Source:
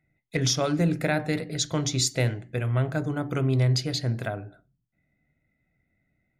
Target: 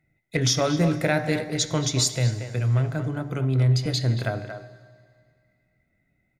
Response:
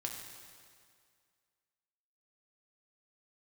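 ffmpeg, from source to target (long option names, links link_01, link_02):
-filter_complex "[0:a]asettb=1/sr,asplit=3[link_01][link_02][link_03];[link_01]atrim=end=2.154[link_04];[link_02]atrim=start=2.15:end=3.86,asetpts=PTS-STARTPTS,afade=type=in:duration=0.004:curve=qsin,afade=type=out:start_time=1.706:duration=0.004:curve=qsin,acrossover=split=200[link_05][link_06];[link_06]acompressor=threshold=-41dB:ratio=1.5[link_07];[link_05][link_07]amix=inputs=2:normalize=0[link_08];[link_03]atrim=start=3.856[link_09];[link_04][link_08]acrossfade=duration=0.004:curve1=hsin:curve2=qsin[link_10];[link_10][link_09]acrossfade=duration=0.004:curve1=qsin:curve2=hsin,asplit=2[link_11][link_12];[link_12]adelay=230,highpass=300,lowpass=3400,asoftclip=type=hard:threshold=-21dB,volume=-8dB[link_13];[link_11][link_13]amix=inputs=2:normalize=0,asplit=2[link_14][link_15];[1:a]atrim=start_sample=2205[link_16];[link_15][link_16]afir=irnorm=-1:irlink=0,volume=-8dB[link_17];[link_14][link_17]amix=inputs=2:normalize=0"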